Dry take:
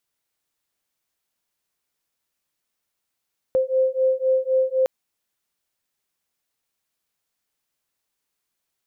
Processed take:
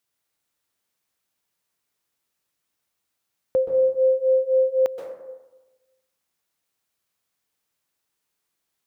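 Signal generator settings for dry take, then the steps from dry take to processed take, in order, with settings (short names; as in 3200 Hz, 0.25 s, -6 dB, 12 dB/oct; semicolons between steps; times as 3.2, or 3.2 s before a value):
beating tones 520 Hz, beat 3.9 Hz, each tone -20.5 dBFS 1.31 s
HPF 41 Hz; plate-style reverb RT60 1.1 s, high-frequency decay 0.4×, pre-delay 0.115 s, DRR 4 dB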